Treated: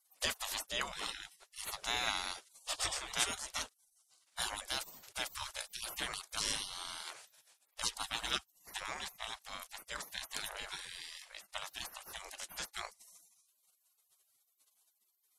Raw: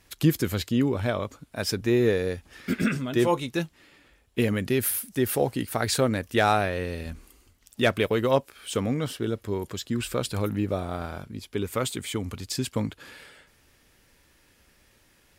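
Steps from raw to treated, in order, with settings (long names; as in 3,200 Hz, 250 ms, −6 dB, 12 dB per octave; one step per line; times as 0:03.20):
low-pass filter 10,000 Hz 24 dB per octave
gate on every frequency bin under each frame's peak −30 dB weak
dynamic equaliser 2,300 Hz, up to −5 dB, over −58 dBFS, Q 1.7
level +9 dB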